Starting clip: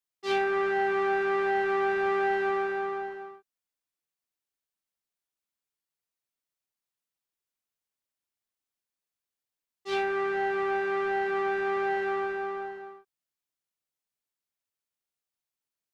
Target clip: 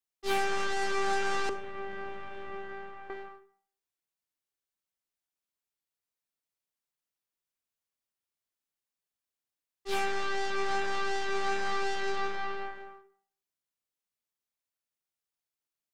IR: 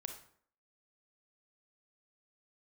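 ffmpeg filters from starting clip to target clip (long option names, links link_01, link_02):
-filter_complex "[0:a]asettb=1/sr,asplit=3[link_01][link_02][link_03];[link_01]atrim=end=1.494[link_04];[link_02]atrim=start=1.49:end=3.1,asetpts=PTS-STARTPTS,afade=type=in:duration=0.004:curve=qsin,afade=type=out:start_time=1.606:duration=0.004:curve=qsin,acrossover=split=260[link_05][link_06];[link_06]acompressor=threshold=-43dB:ratio=3[link_07];[link_05][link_07]amix=inputs=2:normalize=0[link_08];[link_03]atrim=start=3.096[link_09];[link_04][link_08]acrossfade=duration=0.004:curve1=hsin:curve2=qsin[link_10];[link_10][link_09]acrossfade=duration=0.004:curve1=qsin:curve2=hsin,aeval=exprs='0.126*(cos(1*acos(clip(val(0)/0.126,-1,1)))-cos(1*PI/2))+0.0224*(cos(8*acos(clip(val(0)/0.126,-1,1)))-cos(8*PI/2))':channel_layout=same,asplit=2[link_11][link_12];[1:a]atrim=start_sample=2205[link_13];[link_12][link_13]afir=irnorm=-1:irlink=0,volume=2dB[link_14];[link_11][link_14]amix=inputs=2:normalize=0,volume=-7.5dB"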